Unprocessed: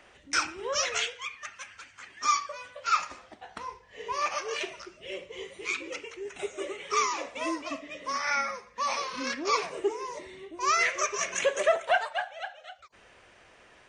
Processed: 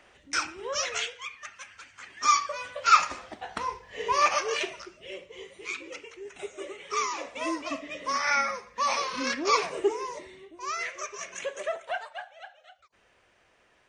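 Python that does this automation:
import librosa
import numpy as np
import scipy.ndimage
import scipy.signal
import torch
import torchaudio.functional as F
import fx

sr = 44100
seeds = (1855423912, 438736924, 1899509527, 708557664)

y = fx.gain(x, sr, db=fx.line((1.7, -1.5), (2.76, 7.0), (4.25, 7.0), (5.24, -3.5), (6.84, -3.5), (7.84, 3.0), (9.98, 3.0), (10.67, -8.0)))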